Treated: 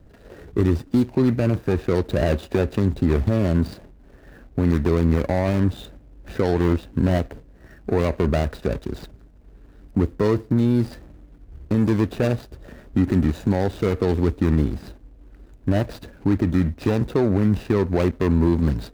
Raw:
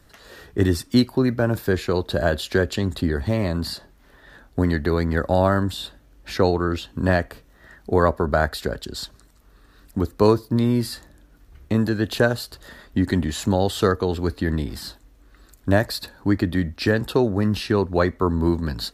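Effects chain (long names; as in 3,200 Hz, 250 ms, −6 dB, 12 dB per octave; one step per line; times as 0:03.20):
running median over 41 samples
brickwall limiter −17 dBFS, peak gain reduction 10.5 dB
level +6.5 dB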